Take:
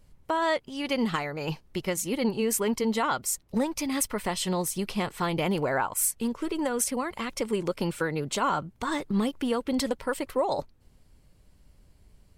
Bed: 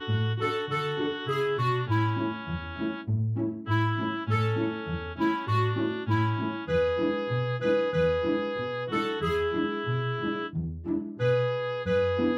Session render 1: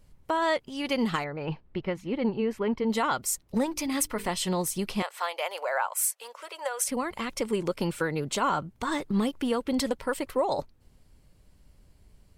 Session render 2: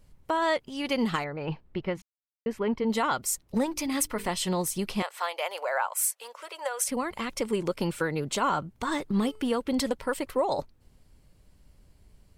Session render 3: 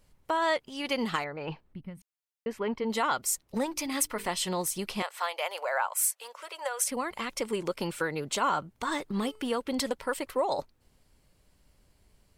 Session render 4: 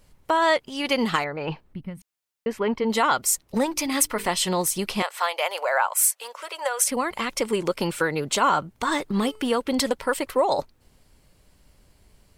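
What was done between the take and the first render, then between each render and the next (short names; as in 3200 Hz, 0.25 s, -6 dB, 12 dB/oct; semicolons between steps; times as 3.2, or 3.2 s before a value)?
1.24–2.9 air absorption 360 m; 3.64–4.29 notches 50/100/150/200/250/300/350/400/450 Hz; 5.02–6.89 elliptic high-pass 550 Hz, stop band 80 dB
2.02–2.46 mute; 9.1–9.54 de-hum 431.6 Hz, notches 33
low shelf 310 Hz -8 dB; 1.74–2.02 spectral gain 280–8000 Hz -18 dB
gain +7 dB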